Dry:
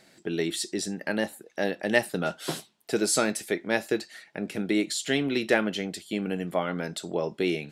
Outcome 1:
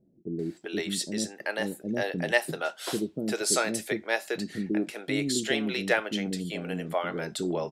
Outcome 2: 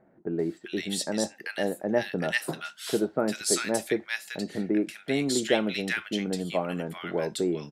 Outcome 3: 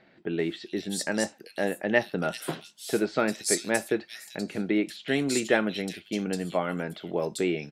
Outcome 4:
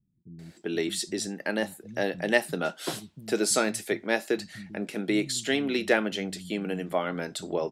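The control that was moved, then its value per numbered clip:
bands offset in time, split: 400, 1300, 3400, 160 Hz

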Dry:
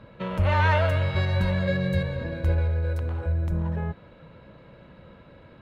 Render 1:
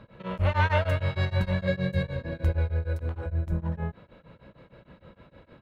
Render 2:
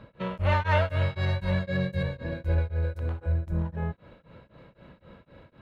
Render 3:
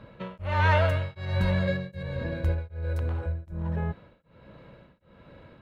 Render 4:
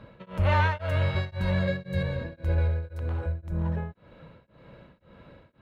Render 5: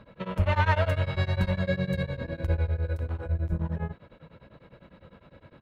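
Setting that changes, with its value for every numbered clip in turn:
beating tremolo, nulls at: 6.5, 3.9, 1.3, 1.9, 9.9 Hz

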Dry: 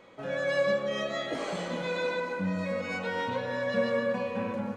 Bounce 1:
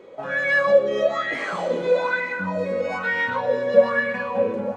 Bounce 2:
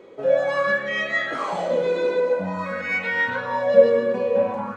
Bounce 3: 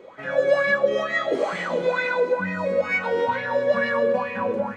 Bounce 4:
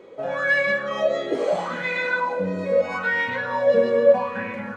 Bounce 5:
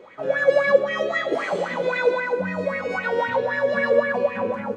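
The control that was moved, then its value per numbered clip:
LFO bell, rate: 1.1, 0.49, 2.2, 0.77, 3.8 Hz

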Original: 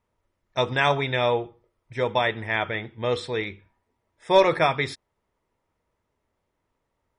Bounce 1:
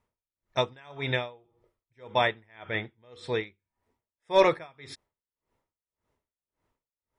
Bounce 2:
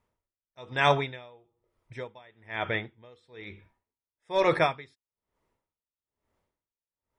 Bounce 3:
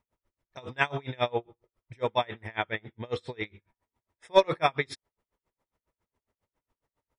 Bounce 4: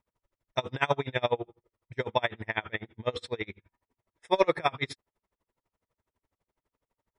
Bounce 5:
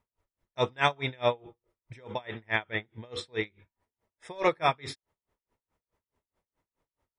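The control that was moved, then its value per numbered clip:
dB-linear tremolo, rate: 1.8, 1.1, 7.3, 12, 4.7 Hz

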